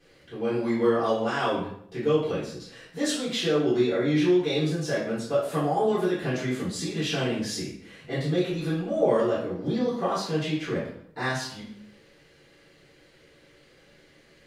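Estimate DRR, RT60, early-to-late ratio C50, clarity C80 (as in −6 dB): −12.0 dB, 0.65 s, 2.5 dB, 6.5 dB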